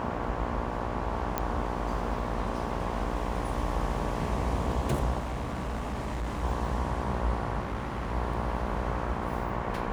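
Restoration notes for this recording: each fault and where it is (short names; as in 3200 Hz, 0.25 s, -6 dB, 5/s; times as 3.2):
buzz 60 Hz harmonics 19 -35 dBFS
1.38 pop -13 dBFS
5.18–6.44 clipped -29 dBFS
7.6–8.12 clipped -28 dBFS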